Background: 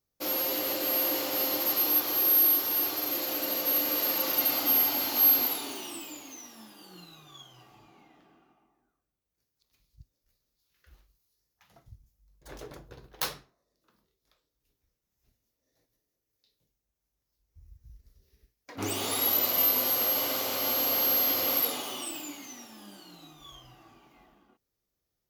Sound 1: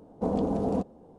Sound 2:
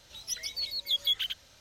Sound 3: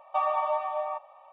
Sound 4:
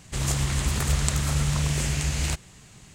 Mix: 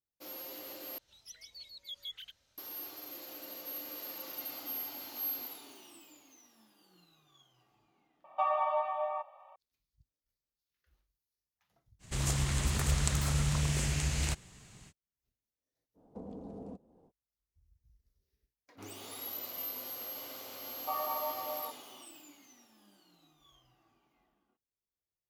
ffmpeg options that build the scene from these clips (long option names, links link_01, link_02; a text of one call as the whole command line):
ffmpeg -i bed.wav -i cue0.wav -i cue1.wav -i cue2.wav -i cue3.wav -filter_complex "[3:a]asplit=2[link_01][link_02];[0:a]volume=-15.5dB[link_03];[1:a]acrossover=split=230|480[link_04][link_05][link_06];[link_04]acompressor=threshold=-38dB:ratio=4[link_07];[link_05]acompressor=threshold=-37dB:ratio=4[link_08];[link_06]acompressor=threshold=-45dB:ratio=4[link_09];[link_07][link_08][link_09]amix=inputs=3:normalize=0[link_10];[link_02]equalizer=frequency=910:width_type=o:width=1.9:gain=4[link_11];[link_03]asplit=2[link_12][link_13];[link_12]atrim=end=0.984[link_14];[2:a]atrim=end=1.6,asetpts=PTS-STARTPTS,volume=-16dB[link_15];[link_13]atrim=start=2.576[link_16];[link_01]atrim=end=1.32,asetpts=PTS-STARTPTS,volume=-3.5dB,afade=type=in:duration=0.004:curve=hsin,afade=type=out:start_time=1.316:duration=0.004:curve=hsin,adelay=8240[link_17];[4:a]atrim=end=2.94,asetpts=PTS-STARTPTS,volume=-6dB,afade=type=in:duration=0.05,afade=type=out:start_time=2.89:duration=0.05,adelay=11990[link_18];[link_10]atrim=end=1.18,asetpts=PTS-STARTPTS,volume=-11.5dB,afade=type=in:duration=0.05,afade=type=out:start_time=1.13:duration=0.05,adelay=15940[link_19];[link_11]atrim=end=1.32,asetpts=PTS-STARTPTS,volume=-13dB,afade=type=in:duration=0.004:curve=hsin,afade=type=out:start_time=1.316:duration=0.004:curve=hsin,adelay=20730[link_20];[link_14][link_15]acrossfade=duration=0.004:curve1=hsin:curve2=hsin[link_21];[link_21][link_16]acrossfade=duration=0.004:curve1=hsin:curve2=hsin[link_22];[link_22][link_17][link_18][link_19][link_20]amix=inputs=5:normalize=0" out.wav